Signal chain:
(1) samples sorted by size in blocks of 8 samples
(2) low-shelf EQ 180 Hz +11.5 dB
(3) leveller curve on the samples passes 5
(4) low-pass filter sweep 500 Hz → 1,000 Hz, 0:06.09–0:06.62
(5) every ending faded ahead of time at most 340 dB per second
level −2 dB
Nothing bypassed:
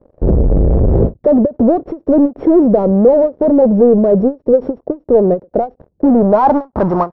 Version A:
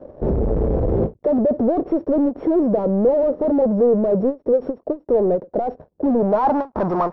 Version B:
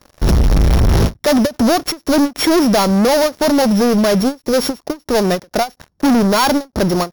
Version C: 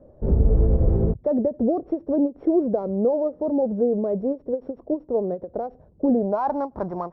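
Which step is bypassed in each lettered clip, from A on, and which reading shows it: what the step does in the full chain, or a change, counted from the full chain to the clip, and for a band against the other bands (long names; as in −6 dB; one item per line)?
2, 125 Hz band −3.0 dB
4, 500 Hz band −4.5 dB
3, change in crest factor +3.5 dB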